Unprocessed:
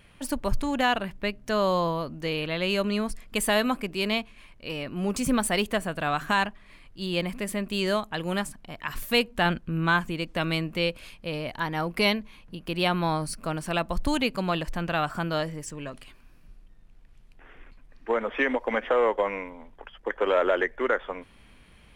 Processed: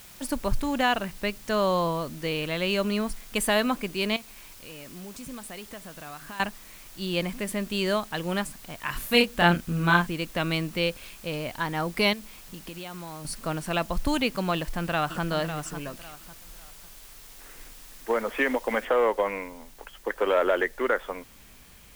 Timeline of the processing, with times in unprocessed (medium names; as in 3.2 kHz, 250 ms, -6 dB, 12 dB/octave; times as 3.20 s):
4.16–6.40 s: compression 2.5:1, threshold -45 dBFS
8.85–10.07 s: doubling 29 ms -2 dB
12.13–13.25 s: compression, threshold -36 dBFS
14.55–15.23 s: echo throw 550 ms, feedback 30%, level -9.5 dB
18.85 s: noise floor step -49 dB -55 dB